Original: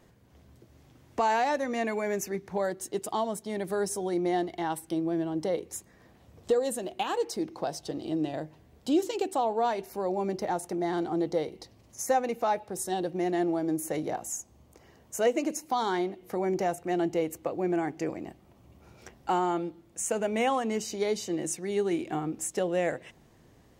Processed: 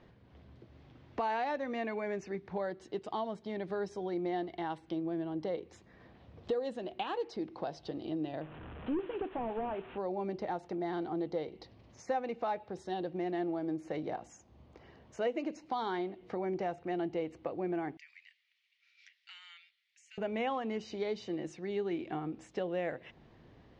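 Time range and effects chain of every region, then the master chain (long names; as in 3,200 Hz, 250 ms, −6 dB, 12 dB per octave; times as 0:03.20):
0:08.41–0:09.98: linear delta modulator 16 kbit/s, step −40 dBFS + parametric band 2,100 Hz −5.5 dB 0.29 octaves
0:17.97–0:20.18: elliptic high-pass filter 2,000 Hz, stop band 80 dB + downward compressor 2 to 1, threshold −48 dBFS
whole clip: downward compressor 1.5 to 1, threshold −44 dBFS; low-pass filter 4,200 Hz 24 dB per octave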